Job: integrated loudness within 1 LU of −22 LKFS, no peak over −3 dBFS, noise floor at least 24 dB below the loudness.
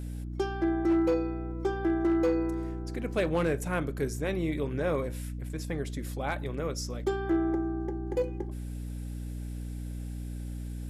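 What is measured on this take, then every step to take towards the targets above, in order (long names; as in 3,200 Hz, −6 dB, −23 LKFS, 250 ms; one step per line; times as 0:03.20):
share of clipped samples 0.5%; peaks flattened at −20.0 dBFS; mains hum 60 Hz; hum harmonics up to 300 Hz; level of the hum −34 dBFS; integrated loudness −31.5 LKFS; sample peak −20.0 dBFS; target loudness −22.0 LKFS
→ clipped peaks rebuilt −20 dBFS
mains-hum notches 60/120/180/240/300 Hz
level +9.5 dB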